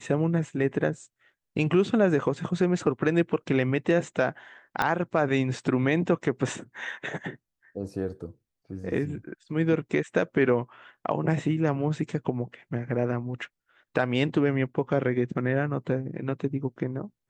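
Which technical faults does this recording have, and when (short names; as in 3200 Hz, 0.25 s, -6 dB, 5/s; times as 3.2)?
4.82 pop -11 dBFS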